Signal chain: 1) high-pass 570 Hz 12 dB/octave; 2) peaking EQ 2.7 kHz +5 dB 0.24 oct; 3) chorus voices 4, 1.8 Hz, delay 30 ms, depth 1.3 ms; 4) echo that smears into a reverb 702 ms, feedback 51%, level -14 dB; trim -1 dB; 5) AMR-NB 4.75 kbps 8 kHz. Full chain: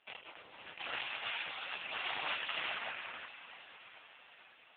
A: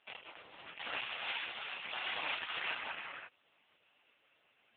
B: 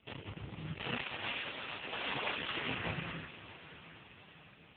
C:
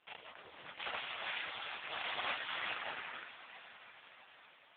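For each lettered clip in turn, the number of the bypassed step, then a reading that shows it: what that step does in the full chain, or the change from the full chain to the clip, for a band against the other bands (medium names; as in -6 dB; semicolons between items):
4, momentary loudness spread change -5 LU; 1, 125 Hz band +22.5 dB; 2, 4 kHz band -2.0 dB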